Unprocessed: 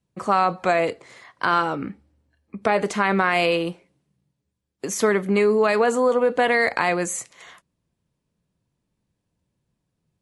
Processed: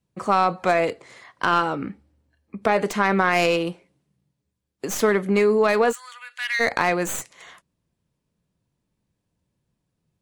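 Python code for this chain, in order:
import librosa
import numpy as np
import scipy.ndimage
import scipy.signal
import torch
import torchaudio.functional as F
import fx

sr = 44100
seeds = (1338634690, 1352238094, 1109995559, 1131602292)

y = fx.tracing_dist(x, sr, depth_ms=0.043)
y = fx.cheby2_highpass(y, sr, hz=290.0, order=4, stop_db=80, at=(5.91, 6.59), fade=0.02)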